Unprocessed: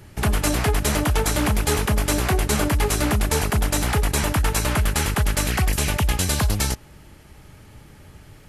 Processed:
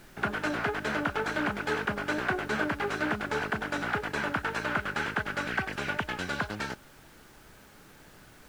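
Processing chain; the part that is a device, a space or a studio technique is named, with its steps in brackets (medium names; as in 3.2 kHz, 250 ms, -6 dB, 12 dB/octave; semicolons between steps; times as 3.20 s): horn gramophone (band-pass 200–3000 Hz; peaking EQ 1.5 kHz +11 dB 0.29 oct; wow and flutter; pink noise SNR 23 dB); trim -7 dB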